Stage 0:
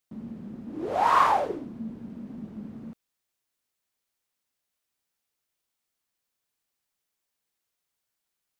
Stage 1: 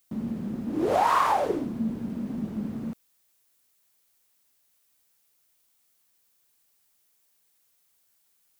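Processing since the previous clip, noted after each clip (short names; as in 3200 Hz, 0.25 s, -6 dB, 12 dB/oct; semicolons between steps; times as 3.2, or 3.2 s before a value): high shelf 7100 Hz +9.5 dB; compressor 6:1, threshold -27 dBFS, peak gain reduction 11.5 dB; gain +7.5 dB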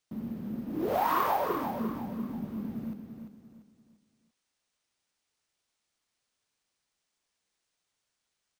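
on a send: feedback echo 0.344 s, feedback 36%, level -7.5 dB; on the sum: careless resampling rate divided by 3×, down filtered, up hold; gain -5.5 dB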